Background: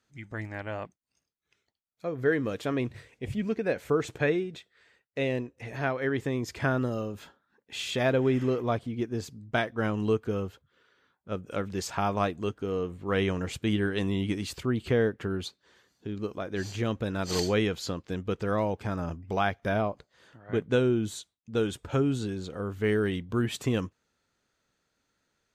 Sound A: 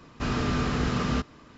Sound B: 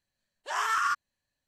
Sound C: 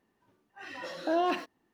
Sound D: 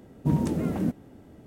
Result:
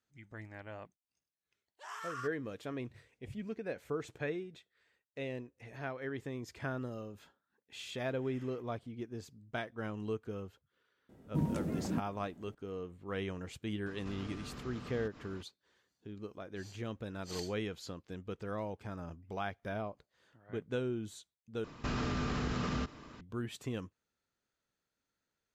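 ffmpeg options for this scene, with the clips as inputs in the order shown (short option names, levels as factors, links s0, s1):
-filter_complex "[1:a]asplit=2[s0][s1];[0:a]volume=0.266[s2];[2:a]highpass=160[s3];[s0]acompressor=threshold=0.00794:ratio=6:attack=3.2:release=140:knee=1:detection=peak[s4];[s1]acompressor=threshold=0.0316:ratio=6:attack=3.2:release=140:knee=1:detection=peak[s5];[s2]asplit=2[s6][s7];[s6]atrim=end=21.644[s8];[s5]atrim=end=1.57,asetpts=PTS-STARTPTS,volume=0.891[s9];[s7]atrim=start=23.206[s10];[s3]atrim=end=1.47,asetpts=PTS-STARTPTS,volume=0.158,afade=t=in:d=0.004:c=hsin,afade=t=out:st=1.466:d=0.004:c=hsin,adelay=1330[s11];[4:a]atrim=end=1.46,asetpts=PTS-STARTPTS,volume=0.355,afade=t=in:d=0.004:c=hsin,afade=t=out:st=1.456:d=0.004:c=hsin,adelay=11090[s12];[s4]atrim=end=1.57,asetpts=PTS-STARTPTS,volume=0.708,afade=t=in:d=0.004:c=hsin,afade=t=out:st=1.566:d=0.004:c=hsin,adelay=13860[s13];[s8][s9]acrossfade=d=0.004:c1=hsin:c2=hsin[s14];[s14][s10]acrossfade=d=0.004:c1=hsin:c2=hsin[s15];[s15][s11][s12][s13]amix=inputs=4:normalize=0"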